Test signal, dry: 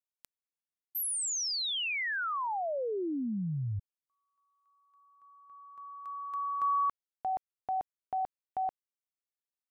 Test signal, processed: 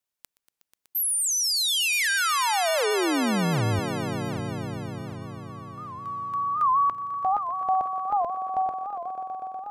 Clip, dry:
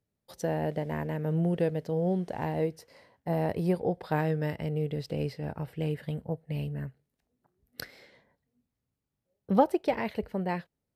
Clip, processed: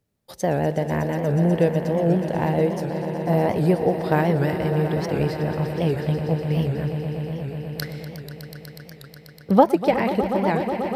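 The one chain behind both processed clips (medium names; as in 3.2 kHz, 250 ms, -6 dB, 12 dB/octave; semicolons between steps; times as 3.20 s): on a send: echo with a slow build-up 122 ms, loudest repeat 5, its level -13 dB; on the sum: warped record 78 rpm, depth 160 cents; trim +8 dB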